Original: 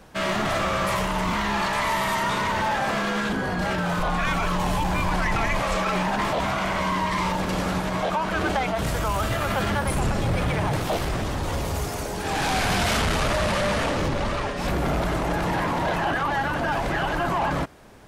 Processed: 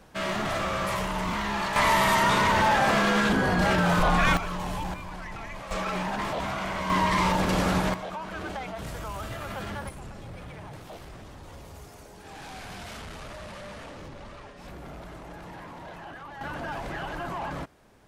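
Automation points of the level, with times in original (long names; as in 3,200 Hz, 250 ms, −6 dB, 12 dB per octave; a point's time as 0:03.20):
−4.5 dB
from 0:01.76 +2.5 dB
from 0:04.37 −8 dB
from 0:04.94 −15 dB
from 0:05.71 −6 dB
from 0:06.90 +1 dB
from 0:07.94 −11 dB
from 0:09.89 −18 dB
from 0:16.41 −9.5 dB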